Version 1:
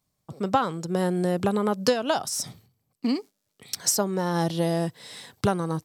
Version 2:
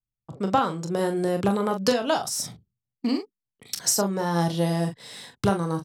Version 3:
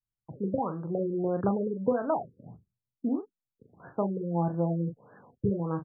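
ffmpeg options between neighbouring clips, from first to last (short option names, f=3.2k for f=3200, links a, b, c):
-filter_complex "[0:a]anlmdn=0.01,asplit=2[a][b];[b]aecho=0:1:25|41:0.251|0.422[c];[a][c]amix=inputs=2:normalize=0"
-af "afftfilt=real='re*lt(b*sr/1024,510*pow(1800/510,0.5+0.5*sin(2*PI*1.6*pts/sr)))':imag='im*lt(b*sr/1024,510*pow(1800/510,0.5+0.5*sin(2*PI*1.6*pts/sr)))':win_size=1024:overlap=0.75,volume=-4dB"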